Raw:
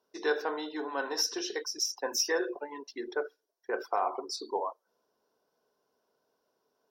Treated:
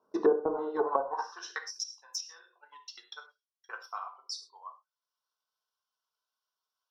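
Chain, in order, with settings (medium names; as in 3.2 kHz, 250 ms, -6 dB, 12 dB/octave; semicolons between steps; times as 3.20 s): high-pass sweep 130 Hz -> 3.1 kHz, 0.02–1.89 s; transient shaper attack +11 dB, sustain -5 dB; in parallel at -1 dB: compression, threshold -32 dBFS, peak gain reduction 17 dB; on the sum: resonant high shelf 1.6 kHz -9.5 dB, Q 3; gated-style reverb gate 140 ms falling, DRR 4 dB; low-pass that closes with the level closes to 490 Hz, closed at -16 dBFS; trim -5 dB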